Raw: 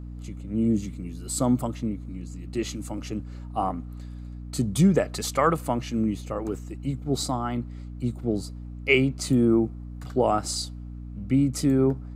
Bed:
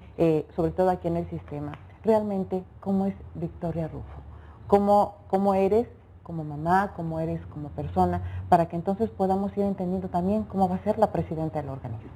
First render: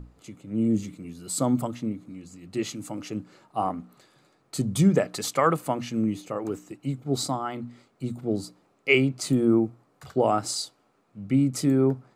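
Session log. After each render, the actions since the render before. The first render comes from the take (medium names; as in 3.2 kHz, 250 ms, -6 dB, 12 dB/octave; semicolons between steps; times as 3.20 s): hum notches 60/120/180/240/300 Hz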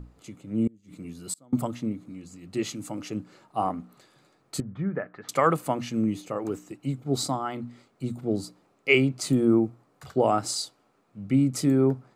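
0.67–1.53 s: inverted gate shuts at -20 dBFS, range -31 dB; 4.60–5.29 s: four-pole ladder low-pass 1.9 kHz, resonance 55%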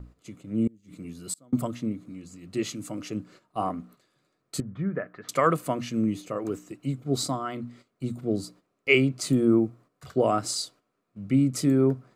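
band-stop 840 Hz, Q 5; gate -50 dBFS, range -10 dB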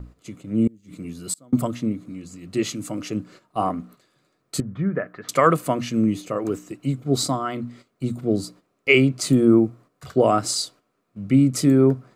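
trim +5.5 dB; peak limiter -3 dBFS, peak gain reduction 2.5 dB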